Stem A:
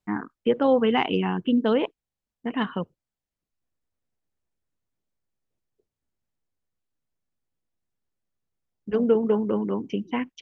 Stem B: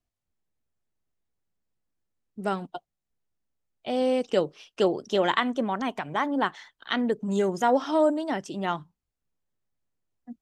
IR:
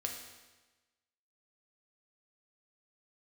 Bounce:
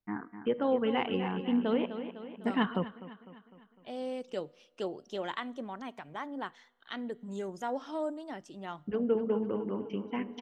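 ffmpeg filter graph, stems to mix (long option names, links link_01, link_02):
-filter_complex "[0:a]equalizer=frequency=7100:width=2.3:gain=-13,volume=-3dB,asplit=3[link_01][link_02][link_03];[link_02]volume=-20dB[link_04];[link_03]volume=-15.5dB[link_05];[1:a]volume=-13.5dB,asplit=3[link_06][link_07][link_08];[link_07]volume=-21dB[link_09];[link_08]apad=whole_len=459257[link_10];[link_01][link_10]sidechaingate=range=-7dB:threshold=-60dB:ratio=16:detection=peak[link_11];[2:a]atrim=start_sample=2205[link_12];[link_04][link_09]amix=inputs=2:normalize=0[link_13];[link_13][link_12]afir=irnorm=-1:irlink=0[link_14];[link_05]aecho=0:1:252|504|756|1008|1260|1512|1764|2016:1|0.54|0.292|0.157|0.085|0.0459|0.0248|0.0134[link_15];[link_11][link_06][link_14][link_15]amix=inputs=4:normalize=0"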